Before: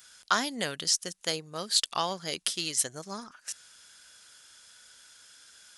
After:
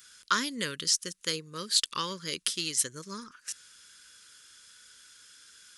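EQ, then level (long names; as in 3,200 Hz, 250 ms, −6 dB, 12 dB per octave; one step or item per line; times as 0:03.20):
Butterworth band-reject 730 Hz, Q 1.4
0.0 dB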